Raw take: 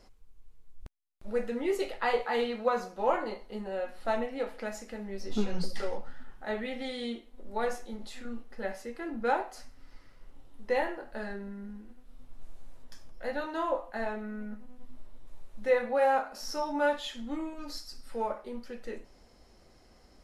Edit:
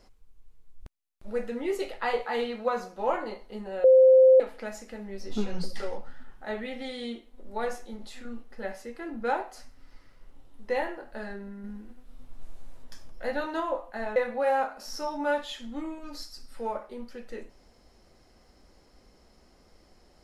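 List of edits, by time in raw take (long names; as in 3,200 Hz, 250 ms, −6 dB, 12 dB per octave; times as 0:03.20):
0:03.84–0:04.40: beep over 521 Hz −12.5 dBFS
0:11.64–0:13.60: clip gain +3.5 dB
0:14.16–0:15.71: remove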